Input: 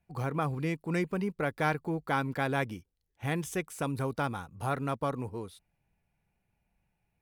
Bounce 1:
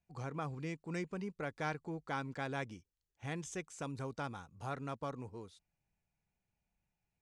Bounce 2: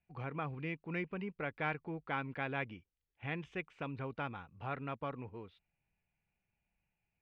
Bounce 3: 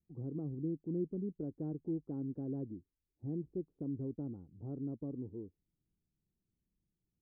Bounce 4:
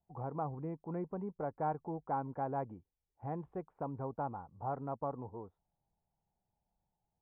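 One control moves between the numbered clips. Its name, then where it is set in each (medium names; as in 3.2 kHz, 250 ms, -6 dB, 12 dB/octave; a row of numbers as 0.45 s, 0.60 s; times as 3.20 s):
four-pole ladder low-pass, frequency: 7.9 kHz, 3.1 kHz, 380 Hz, 1 kHz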